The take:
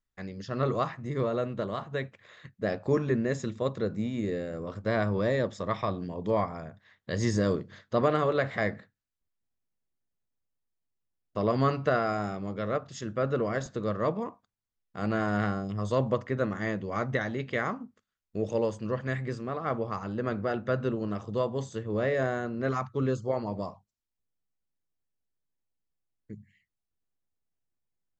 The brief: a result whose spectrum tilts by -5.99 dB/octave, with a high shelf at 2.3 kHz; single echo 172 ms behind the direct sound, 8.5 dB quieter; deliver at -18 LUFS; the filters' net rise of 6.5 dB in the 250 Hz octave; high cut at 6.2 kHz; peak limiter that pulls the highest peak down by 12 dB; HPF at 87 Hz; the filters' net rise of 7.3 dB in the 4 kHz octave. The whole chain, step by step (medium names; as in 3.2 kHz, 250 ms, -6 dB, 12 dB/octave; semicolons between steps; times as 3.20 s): high-pass 87 Hz; low-pass 6.2 kHz; peaking EQ 250 Hz +8 dB; treble shelf 2.3 kHz +4 dB; peaking EQ 4 kHz +6 dB; peak limiter -21 dBFS; delay 172 ms -8.5 dB; trim +13.5 dB